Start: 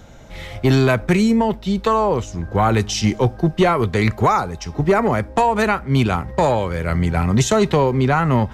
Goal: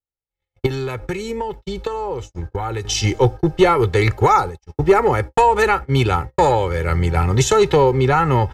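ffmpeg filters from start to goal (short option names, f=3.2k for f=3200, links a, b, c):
-filter_complex "[0:a]agate=range=-59dB:threshold=-25dB:ratio=16:detection=peak,aecho=1:1:2.3:0.73,asettb=1/sr,asplit=3[a][b][c];[a]atrim=end=0.664[d];[b]atrim=start=0.66:end=2.85,asetpts=PTS-STARTPTS,afade=t=in:d=0.004:c=qsin,afade=t=out:st=2.186:d=0.004:c=qsin,acompressor=threshold=-22dB:ratio=6[e];[c]atrim=start=2.846[f];[d][e]acrossfade=d=0.004:c1=hsin:c2=qsin[g];[g][f]acrossfade=d=0.004:c1=qsin:c2=hsin"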